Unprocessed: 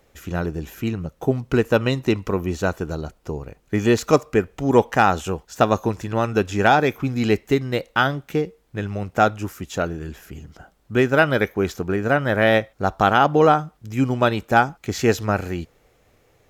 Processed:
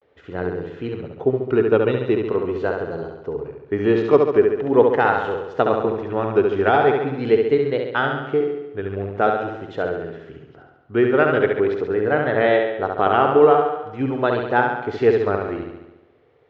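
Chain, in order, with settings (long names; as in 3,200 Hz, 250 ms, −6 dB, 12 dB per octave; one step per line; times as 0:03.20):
loudspeaker in its box 120–3,300 Hz, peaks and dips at 190 Hz −9 dB, 430 Hz +9 dB, 2,500 Hz −5 dB
on a send: flutter between parallel walls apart 11.8 metres, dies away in 0.94 s
on the sum: pitch vibrato 0.43 Hz 76 cents
level −3 dB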